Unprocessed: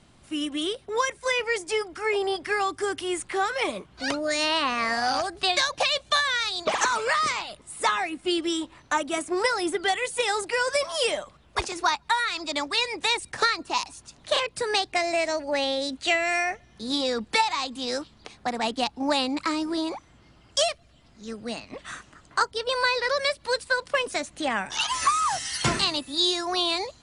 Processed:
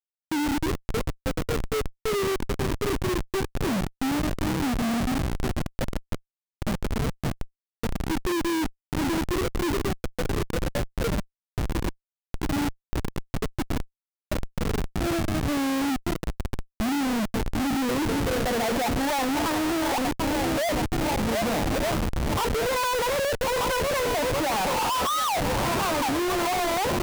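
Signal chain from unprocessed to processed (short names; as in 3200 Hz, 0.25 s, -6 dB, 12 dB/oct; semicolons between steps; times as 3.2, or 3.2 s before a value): notches 60/120/180/240/300/360/420/480 Hz; swung echo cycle 1.231 s, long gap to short 1.5:1, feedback 44%, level -14 dB; low-pass sweep 200 Hz -> 880 Hz, 17.3–19.11; Schmitt trigger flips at -39 dBFS; gain +6 dB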